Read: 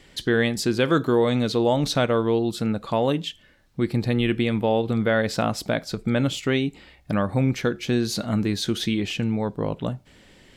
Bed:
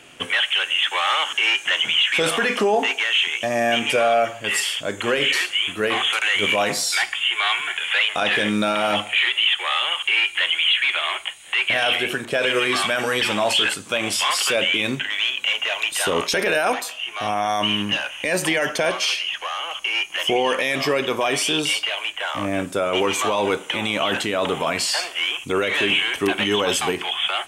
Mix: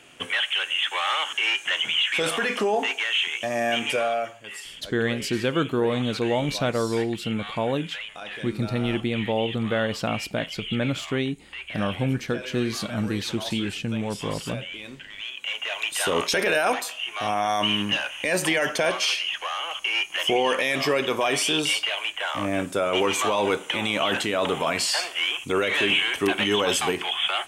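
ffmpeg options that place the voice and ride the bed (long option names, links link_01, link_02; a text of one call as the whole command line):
ffmpeg -i stem1.wav -i stem2.wav -filter_complex "[0:a]adelay=4650,volume=-3.5dB[link_01];[1:a]volume=10dB,afade=type=out:start_time=3.88:duration=0.62:silence=0.251189,afade=type=in:start_time=15.12:duration=1.06:silence=0.188365[link_02];[link_01][link_02]amix=inputs=2:normalize=0" out.wav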